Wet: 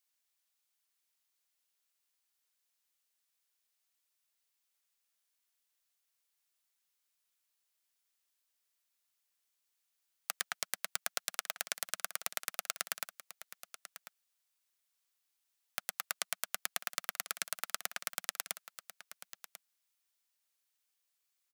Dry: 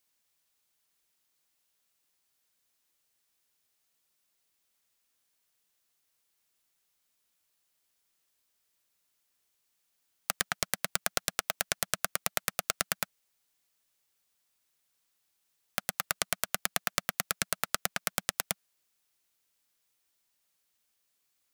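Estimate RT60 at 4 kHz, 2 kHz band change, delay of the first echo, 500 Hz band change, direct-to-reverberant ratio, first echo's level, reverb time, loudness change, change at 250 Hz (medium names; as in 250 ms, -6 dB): no reverb, -6.0 dB, 1043 ms, -10.5 dB, no reverb, -13.5 dB, no reverb, -6.0 dB, -17.5 dB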